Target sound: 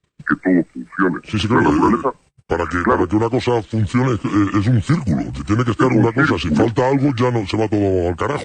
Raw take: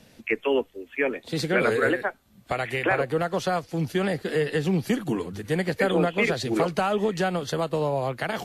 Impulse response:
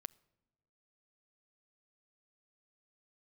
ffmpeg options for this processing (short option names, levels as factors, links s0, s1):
-af "acontrast=69,agate=range=0.0178:threshold=0.00708:ratio=16:detection=peak,asetrate=29433,aresample=44100,atempo=1.49831,volume=1.33"